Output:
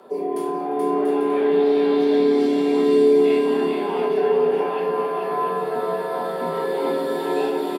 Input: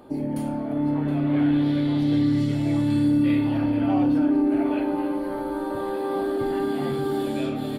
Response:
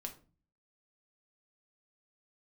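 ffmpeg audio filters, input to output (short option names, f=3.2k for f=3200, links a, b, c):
-filter_complex "[0:a]afreqshift=140,aecho=1:1:430|688|842.8|935.7|991.4:0.631|0.398|0.251|0.158|0.1[a];[1:a]atrim=start_sample=2205,afade=t=out:st=0.19:d=0.01,atrim=end_sample=8820[b];[a][b]afir=irnorm=-1:irlink=0,volume=4.5dB"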